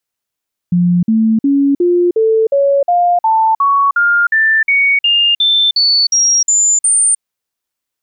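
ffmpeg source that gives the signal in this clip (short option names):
-f lavfi -i "aevalsrc='0.398*clip(min(mod(t,0.36),0.31-mod(t,0.36))/0.005,0,1)*sin(2*PI*176*pow(2,floor(t/0.36)/3)*mod(t,0.36))':d=6.48:s=44100"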